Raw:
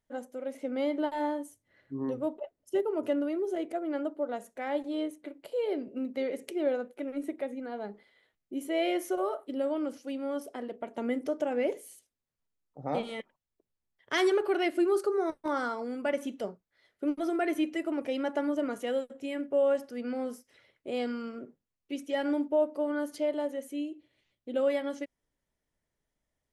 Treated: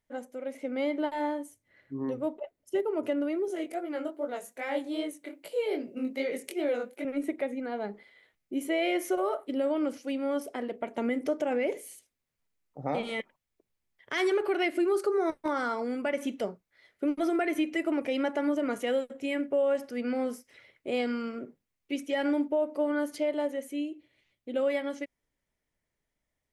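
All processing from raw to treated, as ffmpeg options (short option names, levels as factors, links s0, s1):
-filter_complex "[0:a]asettb=1/sr,asplit=3[s0][s1][s2];[s0]atrim=end=3.484[s3];[s1]atrim=start=3.48:end=7.05,asetpts=PTS-STARTPTS,afade=t=in:d=0.004:c=qsin,afade=t=out:st=3.566:d=0.004:c=qsin,highpass=100,highshelf=f=4400:g=10,flanger=delay=17:depth=6.3:speed=2.5[s4];[s2]atrim=start=7.046[s5];[s3][s4]acrossfade=d=0.004:c1=hsin:c2=qsin[s6];[s6][s5]acrossfade=d=0.004:c1=qsin:c2=hsin,equalizer=f=2200:w=2.9:g=5.5,dynaudnorm=f=780:g=11:m=1.5,alimiter=limit=0.1:level=0:latency=1:release=107"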